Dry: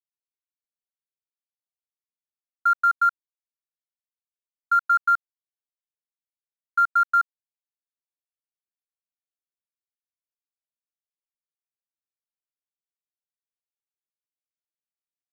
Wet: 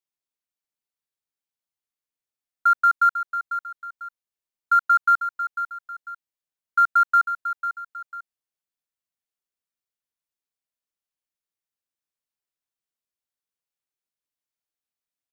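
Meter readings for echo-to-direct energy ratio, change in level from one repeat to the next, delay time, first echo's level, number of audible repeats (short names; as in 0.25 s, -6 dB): -9.5 dB, -9.0 dB, 0.497 s, -10.0 dB, 2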